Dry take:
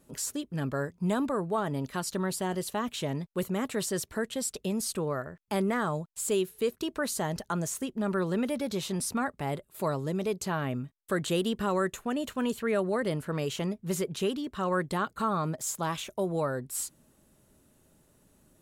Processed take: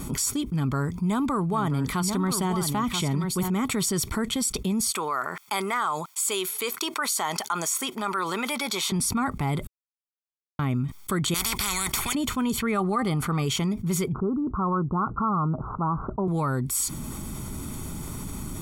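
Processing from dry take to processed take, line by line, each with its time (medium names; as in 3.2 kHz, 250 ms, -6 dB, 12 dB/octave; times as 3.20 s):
0.43–3.50 s: delay 983 ms -10 dB
4.91–8.92 s: high-pass 710 Hz
9.67–10.59 s: mute
11.34–12.15 s: spectrum-flattening compressor 10:1
12.68–13.42 s: small resonant body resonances 780/1200 Hz, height 15 dB, ringing for 95 ms
14.13–16.28 s: steep low-pass 1.4 kHz 96 dB/octave
whole clip: bass shelf 130 Hz +4 dB; comb 0.9 ms, depth 67%; level flattener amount 70%; trim -2 dB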